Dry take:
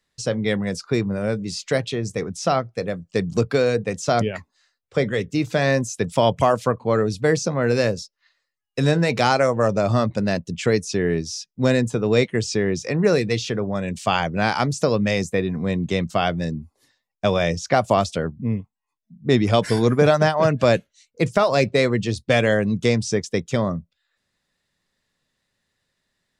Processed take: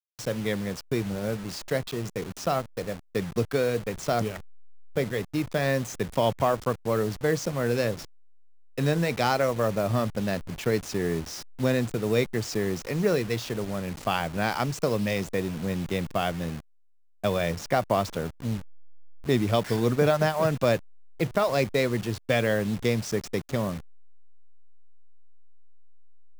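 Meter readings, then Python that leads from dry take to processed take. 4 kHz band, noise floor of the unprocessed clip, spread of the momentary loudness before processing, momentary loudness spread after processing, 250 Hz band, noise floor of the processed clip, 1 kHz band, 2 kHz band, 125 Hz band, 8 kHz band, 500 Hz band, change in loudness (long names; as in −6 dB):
−6.5 dB, −79 dBFS, 8 LU, 8 LU, −6.0 dB, −52 dBFS, −6.5 dB, −6.5 dB, −6.0 dB, −6.0 dB, −6.0 dB, −6.0 dB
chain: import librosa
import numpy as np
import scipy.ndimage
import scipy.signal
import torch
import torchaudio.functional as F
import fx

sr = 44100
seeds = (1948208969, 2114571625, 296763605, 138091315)

y = fx.delta_hold(x, sr, step_db=-28.5)
y = y * 10.0 ** (-6.0 / 20.0)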